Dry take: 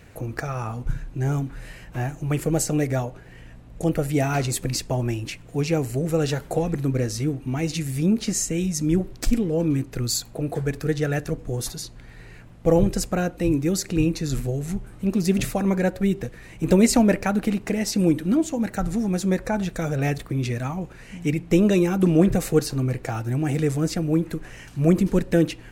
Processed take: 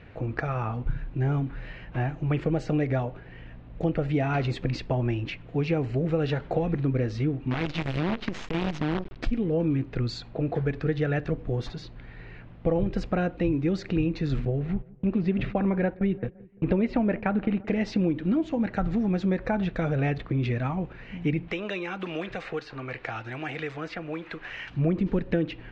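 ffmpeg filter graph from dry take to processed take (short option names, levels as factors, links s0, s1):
-filter_complex "[0:a]asettb=1/sr,asplit=3[s0][s1][s2];[s0]atrim=end=7.514[s3];[s1]atrim=start=7.51:end=9.16,asetpts=PTS-STARTPTS,afade=t=in:d=0.004:c=qsin,afade=t=out:st=1.646:d=0.004:c=qsin,acompressor=threshold=0.0631:ratio=4:attack=3.2:release=140:knee=1:detection=peak,acrusher=bits=5:dc=4:mix=0:aa=0.000001[s4];[s2]atrim=start=9.156[s5];[s3][s4]acrossfade=d=0.004:c1=hsin:c2=qsin[s6];[s6][s5]acrossfade=d=0.004:c1=qsin:c2=hsin,asettb=1/sr,asplit=3[s7][s8][s9];[s7]atrim=end=14.454[s10];[s8]atrim=start=14.45:end=17.68,asetpts=PTS-STARTPTS,afade=t=in:d=0.004:c=qsin,afade=t=out:st=3.226:d=0.004:c=qsin,agate=range=0.0251:threshold=0.0224:ratio=16:release=100:detection=peak,lowpass=3000,asplit=2[s11][s12];[s12]adelay=171,lowpass=f=1500:p=1,volume=0.0708,asplit=2[s13][s14];[s14]adelay=171,lowpass=f=1500:p=1,volume=0.52,asplit=2[s15][s16];[s16]adelay=171,lowpass=f=1500:p=1,volume=0.52[s17];[s11][s13][s15][s17]amix=inputs=4:normalize=0,atrim=end_sample=142443[s18];[s9]atrim=start=17.676[s19];[s10][s18]acrossfade=d=0.004:c1=hsin:c2=qsin[s20];[s20][s19]acrossfade=d=0.004:c1=qsin:c2=hsin,asettb=1/sr,asplit=3[s21][s22][s23];[s21]atrim=end=21.484[s24];[s22]atrim=start=21.48:end=24.7,asetpts=PTS-STARTPTS,afade=t=in:d=0.004:c=qsin,afade=t=out:st=3.216:d=0.004:c=qsin,tiltshelf=f=630:g=-9.5,acrossover=split=410|2500[s25][s26][s27];[s25]acompressor=threshold=0.0112:ratio=4[s28];[s26]acompressor=threshold=0.02:ratio=4[s29];[s27]acompressor=threshold=0.0112:ratio=4[s30];[s28][s29][s30]amix=inputs=3:normalize=0[s31];[s23]atrim=start=24.696[s32];[s24][s31]acrossfade=d=0.004:c1=hsin:c2=qsin[s33];[s33][s32]acrossfade=d=0.004:c1=qsin:c2=hsin,lowpass=f=3500:w=0.5412,lowpass=f=3500:w=1.3066,acompressor=threshold=0.0891:ratio=6"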